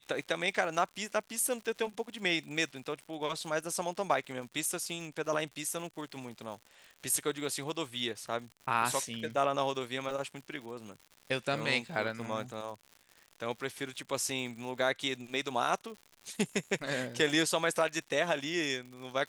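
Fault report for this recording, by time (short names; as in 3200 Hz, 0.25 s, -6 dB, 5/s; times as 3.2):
crackle 140/s -42 dBFS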